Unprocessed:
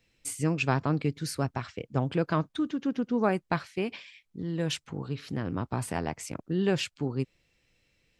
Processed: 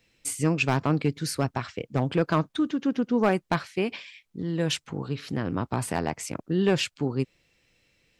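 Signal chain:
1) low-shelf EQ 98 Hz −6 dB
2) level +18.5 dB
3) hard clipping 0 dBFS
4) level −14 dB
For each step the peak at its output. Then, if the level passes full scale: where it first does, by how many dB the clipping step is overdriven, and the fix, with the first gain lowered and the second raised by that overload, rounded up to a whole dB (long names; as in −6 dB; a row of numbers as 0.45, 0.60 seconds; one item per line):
−11.0, +7.5, 0.0, −14.0 dBFS
step 2, 7.5 dB
step 2 +10.5 dB, step 4 −6 dB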